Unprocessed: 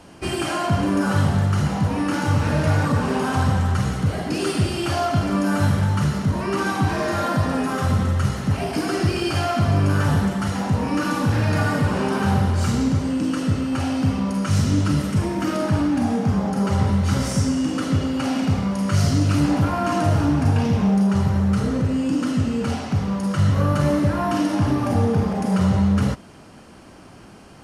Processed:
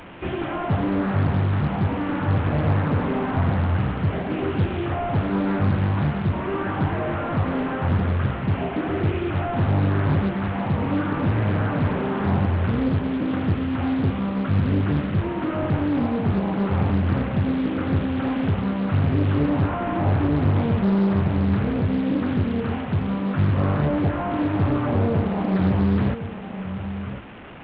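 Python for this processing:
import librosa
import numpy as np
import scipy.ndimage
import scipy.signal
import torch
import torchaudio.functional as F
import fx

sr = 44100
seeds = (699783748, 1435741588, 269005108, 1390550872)

y = fx.delta_mod(x, sr, bps=16000, step_db=-33.5)
y = y + 10.0 ** (-10.5 / 20.0) * np.pad(y, (int(1059 * sr / 1000.0), 0))[:len(y)]
y = fx.doppler_dist(y, sr, depth_ms=0.69)
y = F.gain(torch.from_numpy(y), -1.5).numpy()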